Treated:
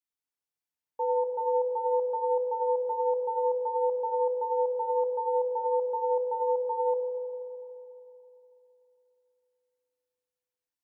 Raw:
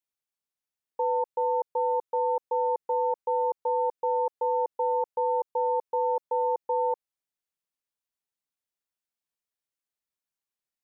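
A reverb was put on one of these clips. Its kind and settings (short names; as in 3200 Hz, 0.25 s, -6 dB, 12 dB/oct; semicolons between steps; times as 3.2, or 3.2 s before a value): FDN reverb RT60 3.2 s, high-frequency decay 0.55×, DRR 0 dB; gain -5.5 dB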